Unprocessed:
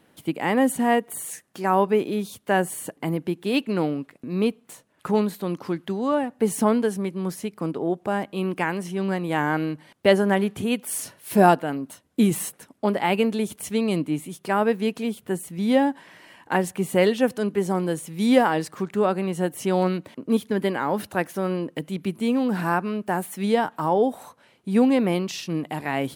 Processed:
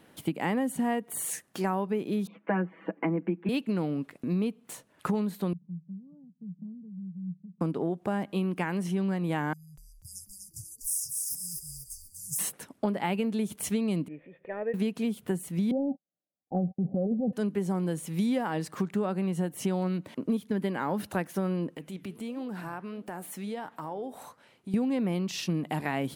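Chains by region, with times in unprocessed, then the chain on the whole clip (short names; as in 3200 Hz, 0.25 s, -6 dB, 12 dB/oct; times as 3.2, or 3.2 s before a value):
2.27–3.49 Chebyshev band-pass 190–2400 Hz, order 4 + comb 6.1 ms, depth 94%
5.53–7.61 Butterworth band-pass 170 Hz, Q 4.7 + compressor 1.5:1, threshold -50 dBFS
9.53–12.39 brick-wall FIR band-stop 150–4800 Hz + low shelf 500 Hz -9 dB + frequency-shifting echo 0.244 s, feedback 44%, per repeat -120 Hz, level -4.5 dB
14.08–14.74 CVSD 64 kbps + vocal tract filter e + upward compressor, threshold -47 dBFS
15.71–17.33 gate -37 dBFS, range -51 dB + transient shaper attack -4 dB, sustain +10 dB + rippled Chebyshev low-pass 790 Hz, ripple 6 dB
21.75–24.74 compressor 3:1, threshold -34 dBFS + flange 1.5 Hz, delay 4.1 ms, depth 7.8 ms, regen -87%
whole clip: dynamic EQ 180 Hz, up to +7 dB, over -37 dBFS, Q 1.4; compressor 6:1, threshold -28 dBFS; gain +1.5 dB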